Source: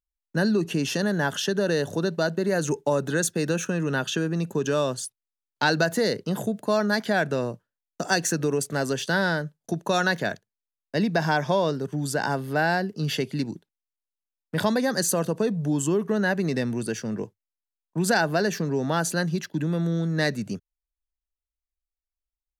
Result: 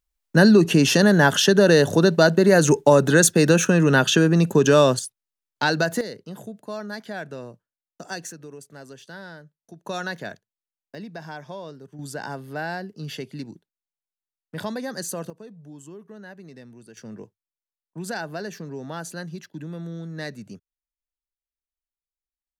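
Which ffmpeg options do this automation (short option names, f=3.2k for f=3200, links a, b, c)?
-af "asetnsamples=n=441:p=0,asendcmd='4.99 volume volume 0.5dB;6.01 volume volume -10dB;8.32 volume volume -16.5dB;9.85 volume volume -7dB;10.95 volume volume -14dB;11.99 volume volume -7dB;15.3 volume volume -18.5dB;16.97 volume volume -9dB',volume=9dB"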